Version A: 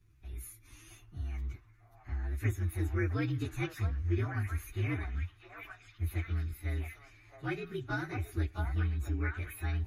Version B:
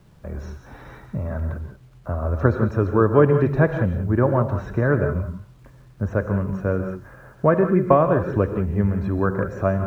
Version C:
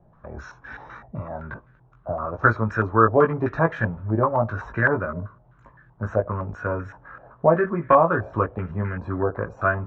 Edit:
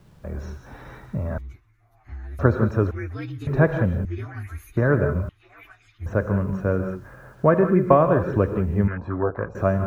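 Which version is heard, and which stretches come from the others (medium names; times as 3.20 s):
B
1.38–2.39 s: from A
2.91–3.47 s: from A
4.05–4.77 s: from A
5.29–6.06 s: from A
8.88–9.55 s: from C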